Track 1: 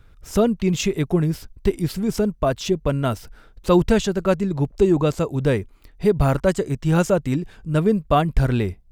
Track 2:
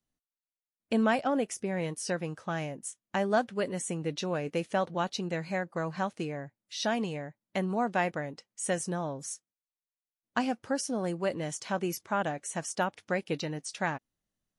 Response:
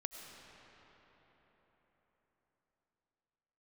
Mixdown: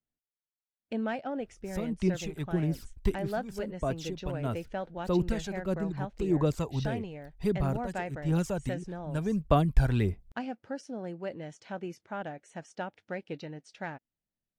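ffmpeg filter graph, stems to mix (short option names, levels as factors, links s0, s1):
-filter_complex "[0:a]acrossover=split=390|3000[s0][s1][s2];[s1]acompressor=threshold=0.1:ratio=6[s3];[s0][s3][s2]amix=inputs=3:normalize=0,aphaser=in_gain=1:out_gain=1:delay=1.3:decay=0.5:speed=1.6:type=sinusoidal,adelay=1400,volume=0.376[s4];[1:a]equalizer=f=1100:w=5.1:g=-9,adynamicsmooth=sensitivity=1:basefreq=3600,volume=0.501,asplit=2[s5][s6];[s6]apad=whole_len=454974[s7];[s4][s7]sidechaincompress=threshold=0.00891:ratio=8:attack=21:release=723[s8];[s8][s5]amix=inputs=2:normalize=0"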